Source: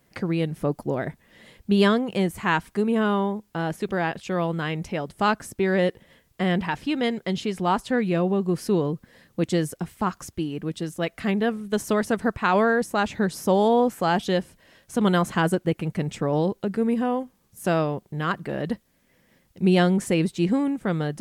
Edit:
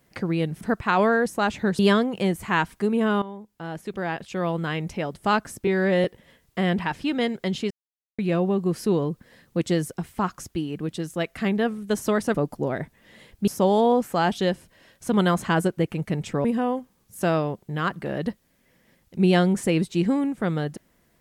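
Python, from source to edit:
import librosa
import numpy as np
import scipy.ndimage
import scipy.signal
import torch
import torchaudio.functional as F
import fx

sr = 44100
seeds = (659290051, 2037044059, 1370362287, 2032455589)

y = fx.edit(x, sr, fx.swap(start_s=0.61, length_s=1.13, other_s=12.17, other_length_s=1.18),
    fx.fade_in_from(start_s=3.17, length_s=1.4, floor_db=-14.5),
    fx.stretch_span(start_s=5.62, length_s=0.25, factor=1.5),
    fx.silence(start_s=7.53, length_s=0.48),
    fx.cut(start_s=16.32, length_s=0.56), tone=tone)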